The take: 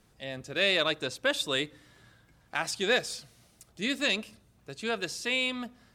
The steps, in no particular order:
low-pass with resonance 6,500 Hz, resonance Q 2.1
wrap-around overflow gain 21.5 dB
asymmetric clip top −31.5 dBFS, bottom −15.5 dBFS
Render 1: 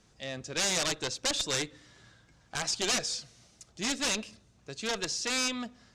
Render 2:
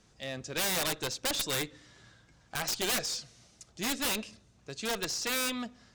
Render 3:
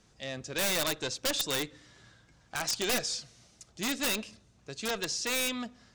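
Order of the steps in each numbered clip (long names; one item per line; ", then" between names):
wrap-around overflow, then asymmetric clip, then low-pass with resonance
low-pass with resonance, then wrap-around overflow, then asymmetric clip
asymmetric clip, then low-pass with resonance, then wrap-around overflow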